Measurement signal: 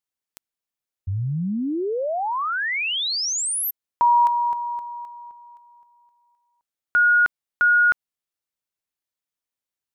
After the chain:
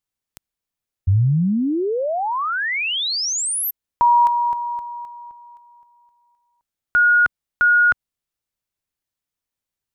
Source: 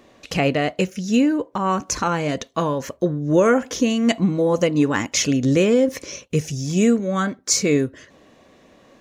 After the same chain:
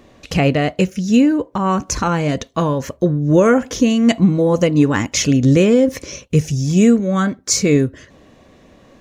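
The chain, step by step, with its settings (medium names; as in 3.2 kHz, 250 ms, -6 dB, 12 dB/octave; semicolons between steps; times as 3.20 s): bass shelf 150 Hz +11.5 dB; trim +2 dB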